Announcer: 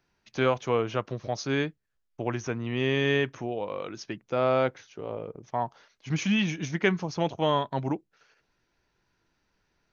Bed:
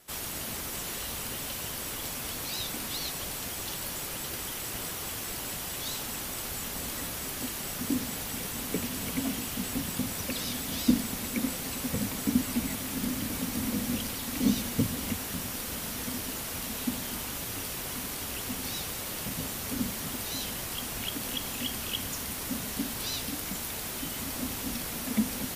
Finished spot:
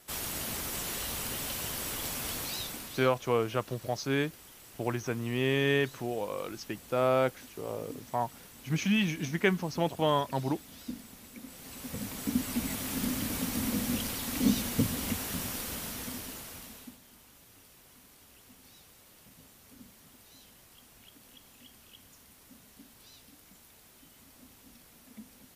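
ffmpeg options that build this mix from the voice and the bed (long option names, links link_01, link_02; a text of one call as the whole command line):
ffmpeg -i stem1.wav -i stem2.wav -filter_complex "[0:a]adelay=2600,volume=-2dB[link_01];[1:a]volume=16dB,afade=type=out:start_time=2.35:duration=0.74:silence=0.149624,afade=type=in:start_time=11.46:duration=1.46:silence=0.158489,afade=type=out:start_time=15.46:duration=1.52:silence=0.0891251[link_02];[link_01][link_02]amix=inputs=2:normalize=0" out.wav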